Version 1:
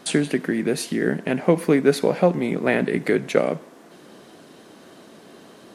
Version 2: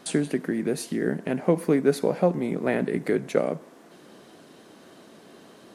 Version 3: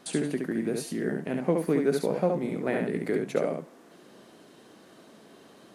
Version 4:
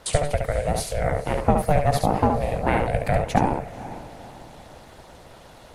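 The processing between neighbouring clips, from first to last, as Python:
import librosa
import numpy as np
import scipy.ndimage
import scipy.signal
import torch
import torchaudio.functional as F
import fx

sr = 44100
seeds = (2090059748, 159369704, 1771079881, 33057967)

y1 = fx.dynamic_eq(x, sr, hz=2800.0, q=0.71, threshold_db=-39.0, ratio=4.0, max_db=-6)
y1 = y1 * librosa.db_to_amplitude(-3.5)
y2 = y1 + 10.0 ** (-4.0 / 20.0) * np.pad(y1, (int(70 * sr / 1000.0), 0))[:len(y1)]
y2 = y2 * librosa.db_to_amplitude(-4.5)
y3 = y2 * np.sin(2.0 * np.pi * 290.0 * np.arange(len(y2)) / sr)
y3 = fx.echo_diffused(y3, sr, ms=478, feedback_pct=41, wet_db=-15)
y3 = fx.hpss(y3, sr, part='percussive', gain_db=6)
y3 = y3 * librosa.db_to_amplitude(6.0)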